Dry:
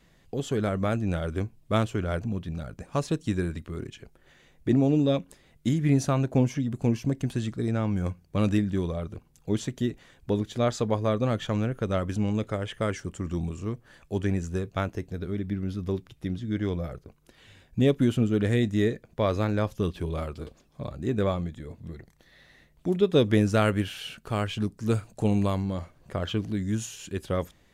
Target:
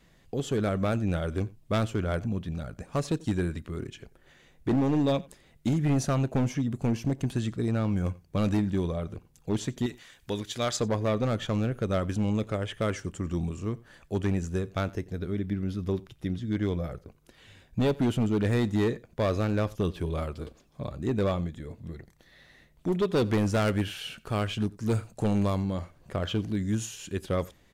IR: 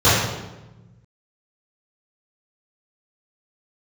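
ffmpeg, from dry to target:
-filter_complex "[0:a]asettb=1/sr,asplit=3[a][b][c];[a]atrim=end=9.864[d];[b]atrim=start=9.86:end=10.77,asetpts=PTS-STARTPTS,afade=t=in:d=0.004:c=qsin,afade=t=out:st=0.906:d=0.004:c=qsin,tiltshelf=f=1.1k:g=-7.5[e];[c]atrim=start=10.766[f];[d][e]acrossfade=d=0.004:c1=hsin:c2=qsin[g];[g][f]acrossfade=d=0.004:c1=qsin:c2=hsin,asoftclip=type=hard:threshold=-20.5dB,aecho=1:1:89:0.0708"

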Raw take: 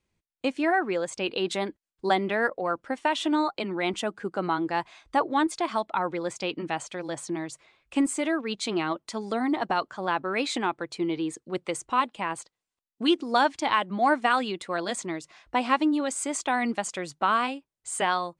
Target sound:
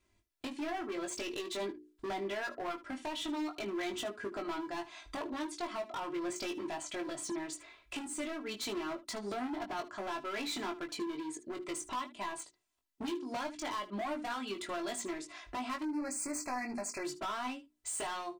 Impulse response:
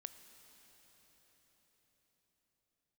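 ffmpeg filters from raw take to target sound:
-filter_complex "[0:a]bandreject=f=60:t=h:w=6,bandreject=f=120:t=h:w=6,bandreject=f=180:t=h:w=6,bandreject=f=240:t=h:w=6,bandreject=f=300:t=h:w=6,bandreject=f=360:t=h:w=6,bandreject=f=420:t=h:w=6,aecho=1:1:3:0.8,acompressor=threshold=-36dB:ratio=4,asoftclip=type=hard:threshold=-37dB,asplit=3[a][b][c];[a]afade=t=out:st=15.82:d=0.02[d];[b]asuperstop=centerf=3300:order=20:qfactor=2.2,afade=t=in:st=15.82:d=0.02,afade=t=out:st=17.03:d=0.02[e];[c]afade=t=in:st=17.03:d=0.02[f];[d][e][f]amix=inputs=3:normalize=0,aecho=1:1:20|76:0.562|0.15,volume=1dB"

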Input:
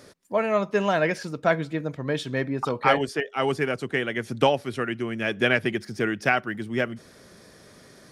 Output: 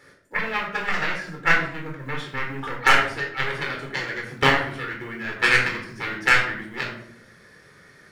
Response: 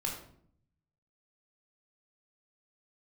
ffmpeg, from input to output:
-filter_complex "[0:a]aeval=exprs='0.668*(cos(1*acos(clip(val(0)/0.668,-1,1)))-cos(1*PI/2))+0.106*(cos(5*acos(clip(val(0)/0.668,-1,1)))-cos(5*PI/2))+0.237*(cos(7*acos(clip(val(0)/0.668,-1,1)))-cos(7*PI/2))':c=same,asettb=1/sr,asplit=3[a][b][c];[a]atrim=end=4.834[d];[b]atrim=start=4.83:end=5.37,asetpts=PTS-STARTPTS,afade=t=in:d=0.004:c=qsin,afade=t=out:st=0.536:d=0.004:c=qsin,acrossover=split=2900[e][f];[f]acompressor=threshold=-45dB:ratio=4:attack=1:release=60[g];[e][g]amix=inputs=2:normalize=0[h];[c]atrim=start=5.366[i];[d][h]acrossfade=d=0.004:c1=hsin:c2=qsin[j];[j][i]acrossfade=d=0.004:c1=qsin:c2=hsin,acrusher=bits=7:mode=log:mix=0:aa=0.000001,equalizer=f=1.8k:t=o:w=1:g=13.5[k];[1:a]atrim=start_sample=2205[l];[k][l]afir=irnorm=-1:irlink=0,volume=-5dB"

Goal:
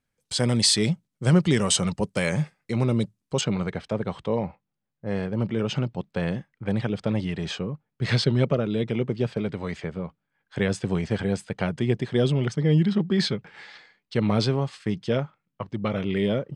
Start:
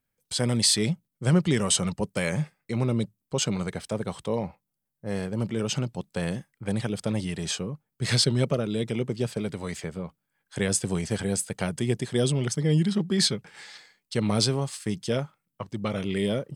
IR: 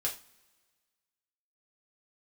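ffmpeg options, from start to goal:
-af "asetnsamples=n=441:p=0,asendcmd='3.41 lowpass f 3200',lowpass=8.4k,volume=2.5dB"

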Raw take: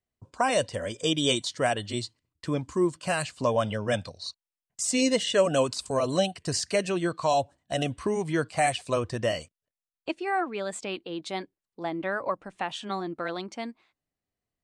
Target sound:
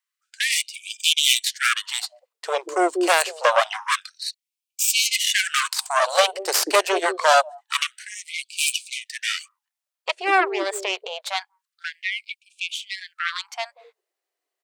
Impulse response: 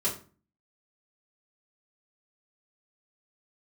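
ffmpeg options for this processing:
-filter_complex "[0:a]aeval=exprs='0.299*(cos(1*acos(clip(val(0)/0.299,-1,1)))-cos(1*PI/2))+0.0944*(cos(6*acos(clip(val(0)/0.299,-1,1)))-cos(6*PI/2))':c=same,acrossover=split=380[a][b];[a]adelay=190[c];[c][b]amix=inputs=2:normalize=0,afftfilt=real='re*gte(b*sr/1024,300*pow(2300/300,0.5+0.5*sin(2*PI*0.26*pts/sr)))':imag='im*gte(b*sr/1024,300*pow(2300/300,0.5+0.5*sin(2*PI*0.26*pts/sr)))':win_size=1024:overlap=0.75,volume=7dB"

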